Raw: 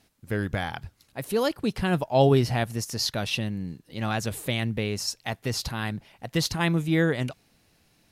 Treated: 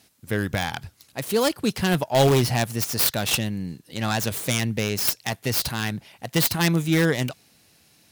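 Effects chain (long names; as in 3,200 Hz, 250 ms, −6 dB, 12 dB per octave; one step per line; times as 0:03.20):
stylus tracing distortion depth 0.24 ms
high-pass filter 76 Hz 12 dB per octave
high-shelf EQ 3,200 Hz +8 dB
in parallel at −8.5 dB: wrap-around overflow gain 14 dB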